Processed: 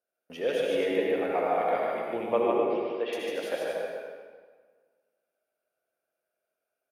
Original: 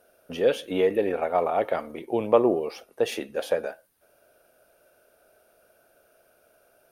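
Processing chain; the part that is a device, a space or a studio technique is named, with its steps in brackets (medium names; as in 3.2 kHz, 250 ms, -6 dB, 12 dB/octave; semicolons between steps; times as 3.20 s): gate -50 dBFS, range -21 dB; 2.43–3.13 s: elliptic band-pass 170–3400 Hz; stadium PA (high-pass 220 Hz 6 dB/octave; peaking EQ 2.1 kHz +5 dB 0.55 oct; loudspeakers at several distances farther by 51 m -3 dB, 84 m -9 dB; reverberation RT60 1.6 s, pre-delay 61 ms, DRR -1 dB); trim -7.5 dB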